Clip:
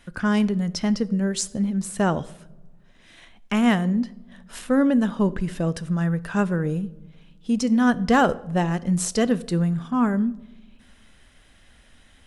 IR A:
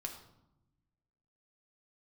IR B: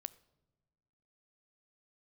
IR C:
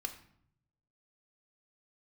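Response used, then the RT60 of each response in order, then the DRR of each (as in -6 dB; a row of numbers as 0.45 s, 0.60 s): B; 0.90 s, no single decay rate, 0.65 s; 2.0 dB, 16.5 dB, 6.0 dB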